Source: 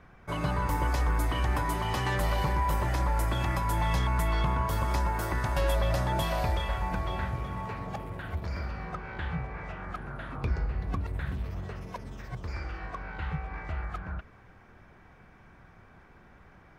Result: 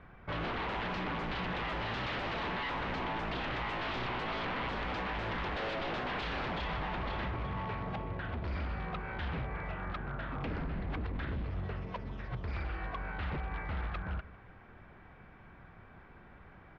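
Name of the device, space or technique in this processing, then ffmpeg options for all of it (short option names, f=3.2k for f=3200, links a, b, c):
synthesiser wavefolder: -af "aecho=1:1:152:0.0891,aeval=exprs='0.0282*(abs(mod(val(0)/0.0282+3,4)-2)-1)':c=same,lowpass=f=3.8k:w=0.5412,lowpass=f=3.8k:w=1.3066"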